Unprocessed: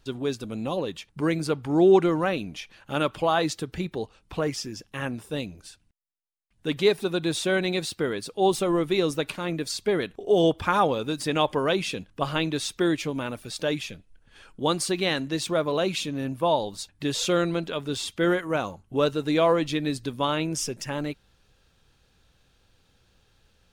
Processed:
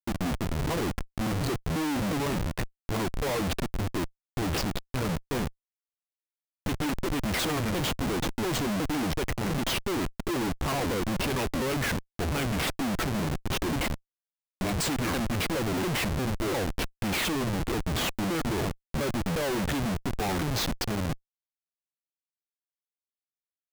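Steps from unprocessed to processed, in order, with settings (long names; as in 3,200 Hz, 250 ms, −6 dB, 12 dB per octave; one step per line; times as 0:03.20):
pitch shifter swept by a sawtooth −11 semitones, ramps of 352 ms
comparator with hysteresis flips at −33.5 dBFS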